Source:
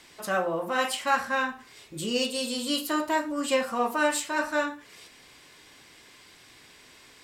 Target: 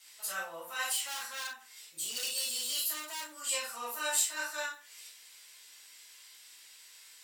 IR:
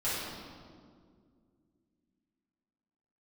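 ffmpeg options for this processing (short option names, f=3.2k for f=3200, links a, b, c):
-filter_complex "[1:a]atrim=start_sample=2205,atrim=end_sample=3087[a];[0:a][a]afir=irnorm=-1:irlink=0,asettb=1/sr,asplit=3[b][c][d];[b]atrim=end=0.924[e];[c]atrim=start=0.92:end=3.41,asetpts=PTS-STARTPTS,afade=t=in:d=0.004:c=qsin,afade=t=out:st=2.486:d=0.004:c=qsin,asoftclip=type=hard:threshold=-24.5dB[f];[d]atrim=start=3.406[g];[e][f]acrossfade=d=0.004:c1=hsin:c2=qsin[h];[h][g]acrossfade=d=0.004:c1=qsin:c2=hsin,aderivative"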